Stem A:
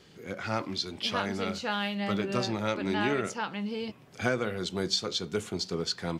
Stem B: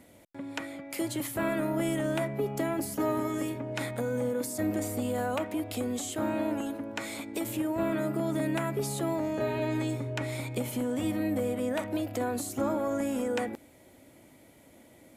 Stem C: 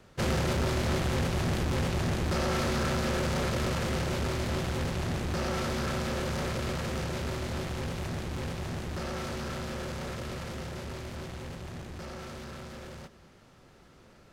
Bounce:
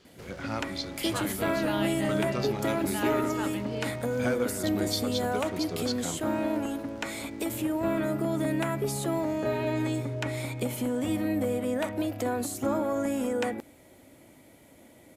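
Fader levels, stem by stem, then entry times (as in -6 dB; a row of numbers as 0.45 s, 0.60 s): -3.5 dB, +1.5 dB, -18.0 dB; 0.00 s, 0.05 s, 0.00 s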